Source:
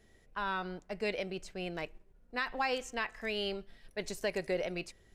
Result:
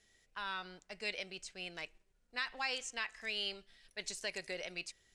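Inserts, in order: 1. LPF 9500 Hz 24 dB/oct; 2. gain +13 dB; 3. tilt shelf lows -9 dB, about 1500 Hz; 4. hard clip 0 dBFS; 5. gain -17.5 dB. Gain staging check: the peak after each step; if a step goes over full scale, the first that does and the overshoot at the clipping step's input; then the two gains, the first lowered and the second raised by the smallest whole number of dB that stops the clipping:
-21.5, -8.5, -5.5, -5.5, -23.0 dBFS; no overload

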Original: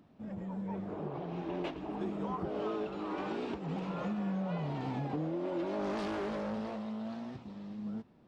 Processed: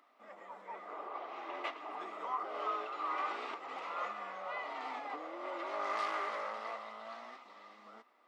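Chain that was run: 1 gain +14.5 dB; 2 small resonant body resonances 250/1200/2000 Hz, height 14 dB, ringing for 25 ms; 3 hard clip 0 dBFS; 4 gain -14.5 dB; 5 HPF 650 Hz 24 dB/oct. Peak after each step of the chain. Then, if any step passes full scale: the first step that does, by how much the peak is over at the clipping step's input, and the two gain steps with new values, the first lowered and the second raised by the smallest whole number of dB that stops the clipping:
-10.5, -2.5, -2.5, -17.0, -24.0 dBFS; no overload

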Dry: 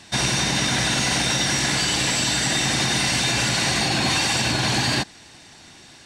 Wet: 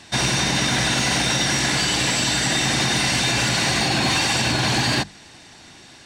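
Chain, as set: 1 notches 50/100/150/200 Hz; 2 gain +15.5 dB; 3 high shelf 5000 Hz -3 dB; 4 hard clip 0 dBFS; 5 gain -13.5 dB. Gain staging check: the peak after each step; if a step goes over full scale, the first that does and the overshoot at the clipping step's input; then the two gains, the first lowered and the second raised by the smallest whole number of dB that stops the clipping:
-12.0, +3.5, +3.0, 0.0, -13.5 dBFS; step 2, 3.0 dB; step 2 +12.5 dB, step 5 -10.5 dB

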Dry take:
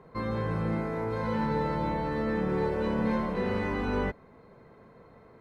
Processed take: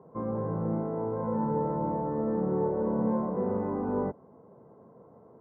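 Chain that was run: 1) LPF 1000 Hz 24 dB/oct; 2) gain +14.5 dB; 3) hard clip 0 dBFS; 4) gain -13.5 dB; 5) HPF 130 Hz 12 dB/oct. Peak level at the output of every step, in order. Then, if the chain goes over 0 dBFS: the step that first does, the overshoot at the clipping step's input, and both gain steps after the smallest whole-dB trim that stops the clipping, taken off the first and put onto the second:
-17.5, -3.0, -3.0, -16.5, -17.0 dBFS; no overload

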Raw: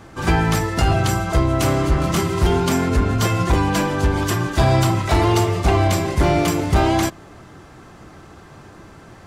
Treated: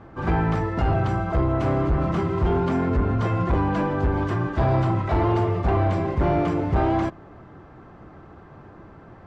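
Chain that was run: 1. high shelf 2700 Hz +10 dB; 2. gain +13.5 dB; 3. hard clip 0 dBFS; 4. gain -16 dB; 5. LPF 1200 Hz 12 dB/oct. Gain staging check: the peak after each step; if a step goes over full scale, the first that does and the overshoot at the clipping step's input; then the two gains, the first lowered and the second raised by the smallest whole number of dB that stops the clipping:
-4.0, +9.5, 0.0, -16.0, -15.5 dBFS; step 2, 9.5 dB; step 2 +3.5 dB, step 4 -6 dB

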